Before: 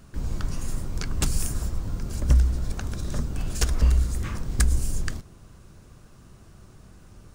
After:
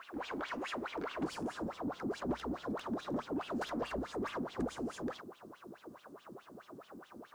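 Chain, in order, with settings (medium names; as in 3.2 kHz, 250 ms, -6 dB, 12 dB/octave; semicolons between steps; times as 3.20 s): wah-wah 4.7 Hz 240–3400 Hz, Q 6.1; overdrive pedal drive 28 dB, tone 1.7 kHz, clips at -26.5 dBFS; bit crusher 12-bit; peaking EQ 150 Hz -10 dB 1.3 oct, from 1.23 s 2.3 kHz; trim +1.5 dB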